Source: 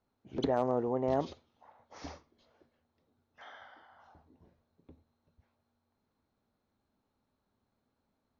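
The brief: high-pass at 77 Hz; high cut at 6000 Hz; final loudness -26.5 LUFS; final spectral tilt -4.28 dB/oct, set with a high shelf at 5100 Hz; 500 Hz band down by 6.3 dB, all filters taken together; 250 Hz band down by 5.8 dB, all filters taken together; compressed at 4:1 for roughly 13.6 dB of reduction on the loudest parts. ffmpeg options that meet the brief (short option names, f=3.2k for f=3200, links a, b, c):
-af "highpass=77,lowpass=6k,equalizer=f=250:t=o:g=-4.5,equalizer=f=500:t=o:g=-7,highshelf=f=5.1k:g=-3.5,acompressor=threshold=-46dB:ratio=4,volume=26.5dB"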